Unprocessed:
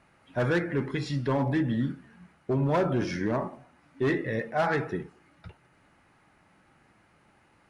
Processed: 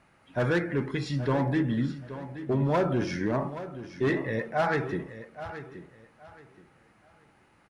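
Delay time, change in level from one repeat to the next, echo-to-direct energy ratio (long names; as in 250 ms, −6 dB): 825 ms, −12.0 dB, −12.5 dB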